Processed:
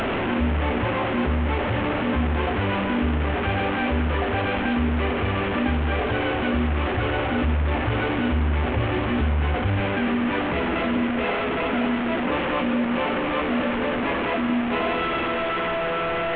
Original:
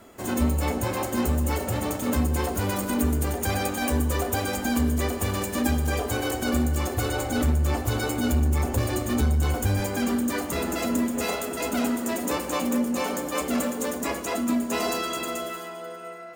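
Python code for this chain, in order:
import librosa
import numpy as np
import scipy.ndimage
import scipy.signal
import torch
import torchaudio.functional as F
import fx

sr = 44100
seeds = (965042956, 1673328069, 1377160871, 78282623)

y = fx.delta_mod(x, sr, bps=16000, step_db=-22.5)
y = fx.env_flatten(y, sr, amount_pct=50)
y = y * 10.0 ** (-1.0 / 20.0)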